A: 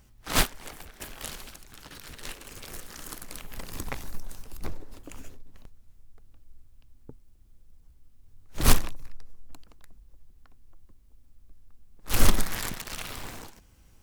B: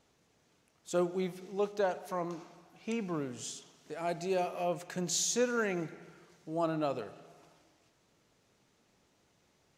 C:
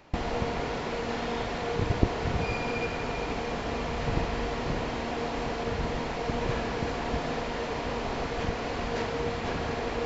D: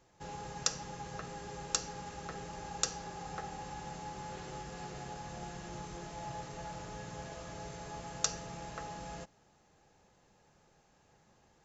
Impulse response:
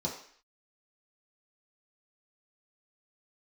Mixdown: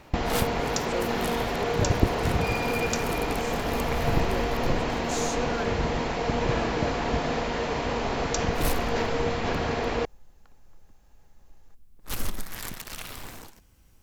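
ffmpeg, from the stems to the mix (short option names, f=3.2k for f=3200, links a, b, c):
-filter_complex "[0:a]equalizer=f=13k:t=o:w=0.25:g=4.5,alimiter=limit=-14.5dB:level=0:latency=1:release=381,volume=-1.5dB[a];[1:a]volume=-3.5dB[b];[2:a]acontrast=32,volume=-1.5dB[c];[3:a]adelay=100,volume=-0.5dB[d];[a][b][c][d]amix=inputs=4:normalize=0"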